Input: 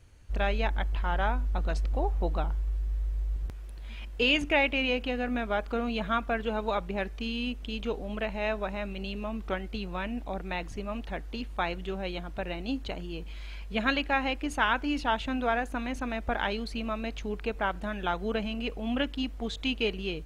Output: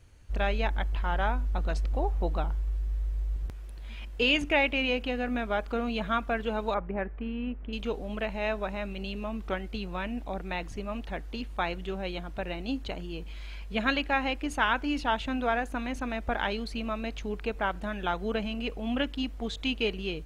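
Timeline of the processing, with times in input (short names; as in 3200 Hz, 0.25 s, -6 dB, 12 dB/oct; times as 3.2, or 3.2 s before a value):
6.74–7.73 LPF 2000 Hz 24 dB/oct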